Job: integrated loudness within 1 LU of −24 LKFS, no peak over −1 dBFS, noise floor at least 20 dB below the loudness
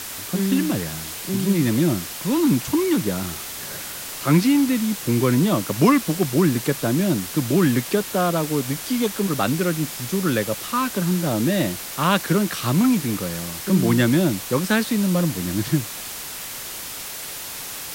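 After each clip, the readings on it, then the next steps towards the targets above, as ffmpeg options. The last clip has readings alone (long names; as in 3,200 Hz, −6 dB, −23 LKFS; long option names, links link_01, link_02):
background noise floor −33 dBFS; target noise floor −42 dBFS; integrated loudness −21.5 LKFS; sample peak −4.5 dBFS; target loudness −24.0 LKFS
→ -af "afftdn=noise_reduction=9:noise_floor=-33"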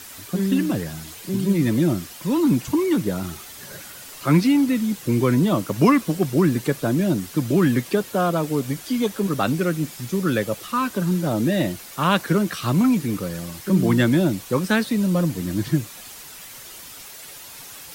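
background noise floor −40 dBFS; target noise floor −42 dBFS
→ -af "afftdn=noise_reduction=6:noise_floor=-40"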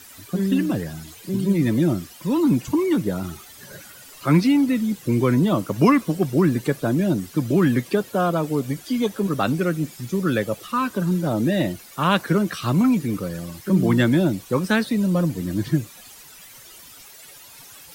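background noise floor −45 dBFS; integrated loudness −21.5 LKFS; sample peak −5.0 dBFS; target loudness −24.0 LKFS
→ -af "volume=-2.5dB"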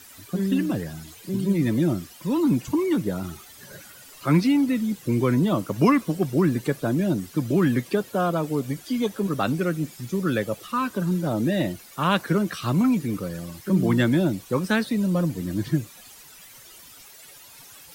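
integrated loudness −24.0 LKFS; sample peak −7.5 dBFS; background noise floor −47 dBFS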